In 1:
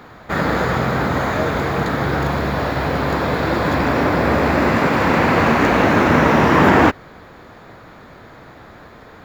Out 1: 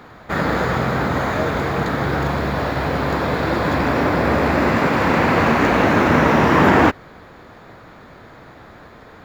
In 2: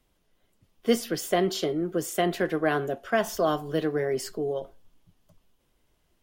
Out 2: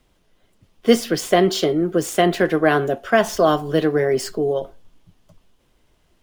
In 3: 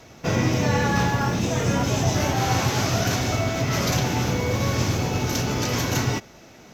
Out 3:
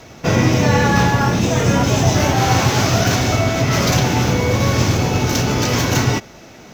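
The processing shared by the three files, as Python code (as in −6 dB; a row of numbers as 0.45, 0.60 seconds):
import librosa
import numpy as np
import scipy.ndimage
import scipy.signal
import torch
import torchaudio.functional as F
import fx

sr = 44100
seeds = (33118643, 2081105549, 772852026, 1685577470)

y = scipy.ndimage.median_filter(x, 3, mode='constant')
y = y * 10.0 ** (-2 / 20.0) / np.max(np.abs(y))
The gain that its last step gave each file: −1.0, +8.5, +7.0 decibels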